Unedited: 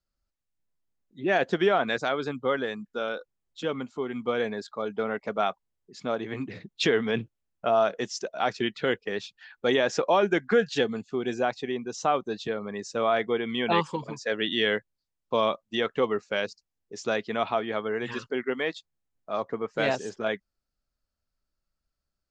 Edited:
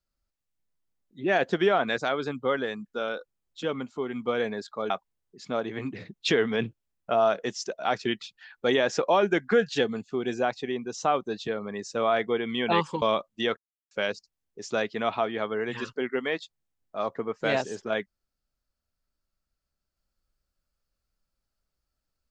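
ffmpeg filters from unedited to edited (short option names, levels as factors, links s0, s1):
-filter_complex "[0:a]asplit=6[s0][s1][s2][s3][s4][s5];[s0]atrim=end=4.902[s6];[s1]atrim=start=5.448:end=8.782[s7];[s2]atrim=start=9.228:end=14.022[s8];[s3]atrim=start=15.358:end=15.91,asetpts=PTS-STARTPTS,afade=t=out:st=0.548:d=0.004:c=hsin[s9];[s4]atrim=start=15.91:end=16.25,asetpts=PTS-STARTPTS,volume=0[s10];[s5]atrim=start=16.25,asetpts=PTS-STARTPTS,afade=t=in:d=0.004:c=hsin[s11];[s6][s7]acrossfade=d=0.004:c1=hsin:c2=hsin[s12];[s12][s8]acrossfade=d=0.004:c1=hsin:c2=hsin[s13];[s9][s10][s11]concat=n=3:v=0:a=1[s14];[s13][s14]acrossfade=d=0.004:c1=hsin:c2=hsin"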